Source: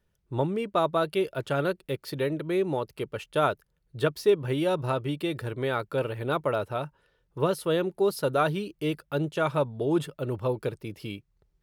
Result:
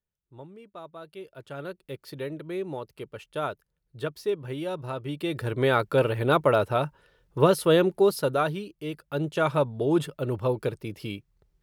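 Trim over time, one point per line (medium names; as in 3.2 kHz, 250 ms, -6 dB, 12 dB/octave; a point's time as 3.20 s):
0.94 s -18 dB
1.98 s -6 dB
4.91 s -6 dB
5.62 s +6 dB
7.87 s +6 dB
8.83 s -6 dB
9.36 s +2 dB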